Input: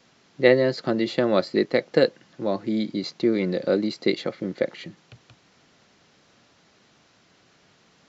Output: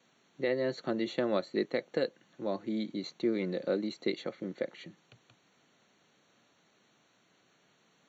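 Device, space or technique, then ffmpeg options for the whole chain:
PA system with an anti-feedback notch: -af "highpass=140,asuperstop=centerf=5000:order=20:qfactor=5.2,alimiter=limit=-10dB:level=0:latency=1:release=255,volume=-8.5dB"

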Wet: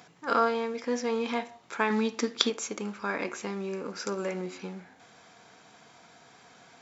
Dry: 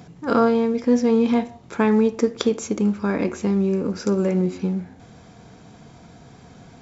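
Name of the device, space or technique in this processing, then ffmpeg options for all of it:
filter by subtraction: -filter_complex "[0:a]asettb=1/sr,asplit=3[link_01][link_02][link_03];[link_01]atrim=end=1.904[link_04];[link_02]atrim=start=1.9:end=2.5,asetpts=PTS-STARTPTS,afade=type=in:duration=0.004:curve=qsin,afade=type=out:start_time=0.596:duration=0.004:curve=qsin,equalizer=frequency=250:width_type=o:width=1:gain=8,equalizer=frequency=500:width_type=o:width=1:gain=-4,equalizer=frequency=4000:width_type=o:width=1:gain=8[link_05];[link_03]atrim=start=2.496[link_06];[link_04][link_05]acrossfade=duration=0.004:curve1=hsin:curve2=qsin[link_07];[link_07][link_06]acrossfade=duration=0.004:curve1=qsin:curve2=hsin,asplit=2[link_08][link_09];[link_09]lowpass=1500,volume=-1[link_10];[link_08][link_10]amix=inputs=2:normalize=0,volume=-2.5dB"

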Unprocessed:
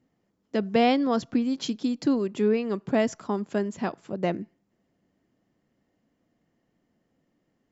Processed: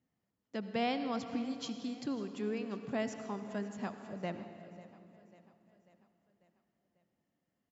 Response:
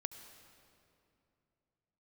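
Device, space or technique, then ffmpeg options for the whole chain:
stairwell: -filter_complex "[0:a]highpass=51[link_01];[1:a]atrim=start_sample=2205[link_02];[link_01][link_02]afir=irnorm=-1:irlink=0,equalizer=frequency=370:width=1:gain=-6,aecho=1:1:544|1088|1632|2176|2720:0.112|0.0617|0.0339|0.0187|0.0103,volume=-7dB"

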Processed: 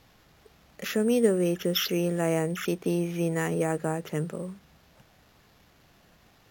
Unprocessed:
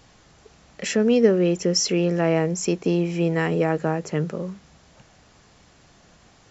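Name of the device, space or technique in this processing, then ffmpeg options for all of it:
crushed at another speed: -af "asetrate=55125,aresample=44100,acrusher=samples=4:mix=1:aa=0.000001,asetrate=35280,aresample=44100,volume=-5.5dB"

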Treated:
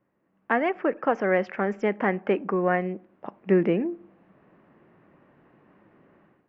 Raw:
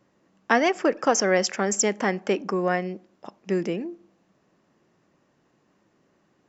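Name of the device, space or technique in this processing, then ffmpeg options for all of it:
action camera in a waterproof case: -af "lowpass=frequency=2400:width=0.5412,lowpass=frequency=2400:width=1.3066,dynaudnorm=framelen=260:gausssize=3:maxgain=16dB,volume=-8dB" -ar 48000 -c:a aac -b:a 96k

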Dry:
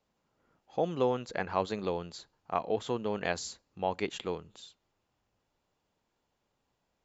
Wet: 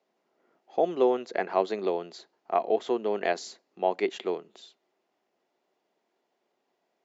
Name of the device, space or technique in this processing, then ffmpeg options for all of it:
television speaker: -af "highpass=frequency=210:width=0.5412,highpass=frequency=210:width=1.3066,equalizer=frequency=380:width_type=q:width=4:gain=10,equalizer=frequency=680:width_type=q:width=4:gain=9,equalizer=frequency=2000:width_type=q:width=4:gain=5,lowpass=frequency=6700:width=0.5412,lowpass=frequency=6700:width=1.3066"

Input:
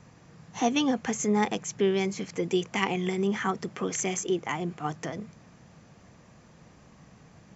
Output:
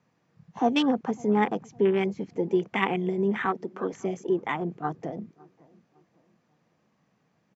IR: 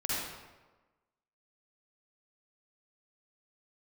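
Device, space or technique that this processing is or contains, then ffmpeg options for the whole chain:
over-cleaned archive recording: -filter_complex "[0:a]highpass=160,lowpass=5100,afwtdn=0.02,asettb=1/sr,asplit=3[link_01][link_02][link_03];[link_01]atrim=end=3.454[link_04];[link_02]atrim=start=3.45:end=3.93,asetpts=PTS-STARTPTS,afade=type=in:duration=0.004:curve=qsin,afade=type=out:start_time=0.476:duration=0.004:curve=qsin,highpass=230[link_05];[link_03]atrim=start=3.926[link_06];[link_04][link_05]acrossfade=duration=0.004:curve1=hsin:curve2=qsin[link_07];[link_07][link_06]acrossfade=duration=0.004:curve1=qsin:curve2=hsin,asplit=2[link_08][link_09];[link_09]adelay=555,lowpass=frequency=940:poles=1,volume=-23.5dB,asplit=2[link_10][link_11];[link_11]adelay=555,lowpass=frequency=940:poles=1,volume=0.41,asplit=2[link_12][link_13];[link_13]adelay=555,lowpass=frequency=940:poles=1,volume=0.41[link_14];[link_08][link_10][link_12][link_14]amix=inputs=4:normalize=0,volume=2.5dB"

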